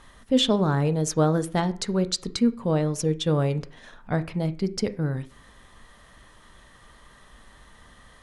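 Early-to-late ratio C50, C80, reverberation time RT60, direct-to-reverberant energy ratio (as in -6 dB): 18.0 dB, 22.0 dB, 0.45 s, 11.0 dB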